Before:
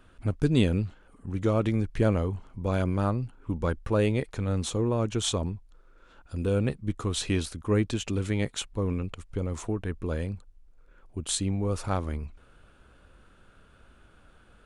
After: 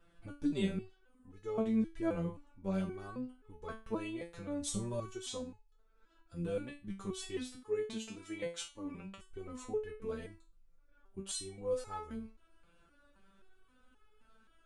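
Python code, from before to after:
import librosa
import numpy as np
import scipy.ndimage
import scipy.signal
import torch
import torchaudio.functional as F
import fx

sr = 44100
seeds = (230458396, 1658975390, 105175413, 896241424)

p1 = fx.bass_treble(x, sr, bass_db=11, treble_db=12, at=(4.61, 5.11), fade=0.02)
p2 = fx.rider(p1, sr, range_db=10, speed_s=2.0)
p3 = p1 + (p2 * 10.0 ** (0.0 / 20.0))
p4 = fx.low_shelf(p3, sr, hz=130.0, db=-11.0, at=(7.56, 9.18))
p5 = fx.resonator_held(p4, sr, hz=3.8, low_hz=170.0, high_hz=430.0)
y = p5 * 10.0 ** (-4.0 / 20.0)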